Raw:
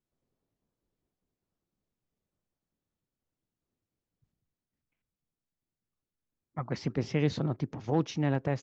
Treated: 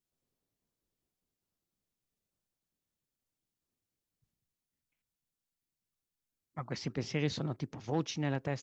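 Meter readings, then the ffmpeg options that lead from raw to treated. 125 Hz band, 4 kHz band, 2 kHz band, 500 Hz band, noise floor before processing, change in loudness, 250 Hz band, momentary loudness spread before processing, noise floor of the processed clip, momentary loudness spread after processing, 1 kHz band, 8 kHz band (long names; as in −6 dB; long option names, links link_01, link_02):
−5.5 dB, +1.5 dB, −1.5 dB, −5.0 dB, below −85 dBFS, −5.0 dB, −5.5 dB, 8 LU, below −85 dBFS, 8 LU, −4.5 dB, can't be measured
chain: -af "highshelf=frequency=2300:gain=9.5,volume=-5.5dB"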